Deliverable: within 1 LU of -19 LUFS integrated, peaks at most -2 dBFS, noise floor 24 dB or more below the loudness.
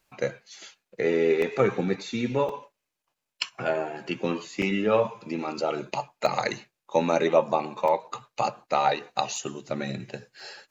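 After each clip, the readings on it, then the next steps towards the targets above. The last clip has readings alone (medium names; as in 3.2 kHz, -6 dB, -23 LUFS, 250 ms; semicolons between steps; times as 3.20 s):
dropouts 7; longest dropout 2.9 ms; loudness -27.5 LUFS; peak level -5.5 dBFS; loudness target -19.0 LUFS
-> interpolate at 1.42/2.49/4.62/6.26/7.88/9.36/10.40 s, 2.9 ms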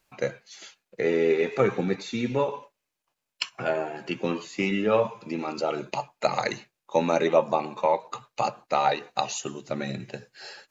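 dropouts 0; loudness -27.5 LUFS; peak level -5.5 dBFS; loudness target -19.0 LUFS
-> trim +8.5 dB; peak limiter -2 dBFS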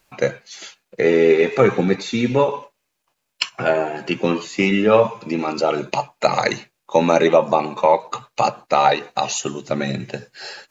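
loudness -19.0 LUFS; peak level -2.0 dBFS; noise floor -75 dBFS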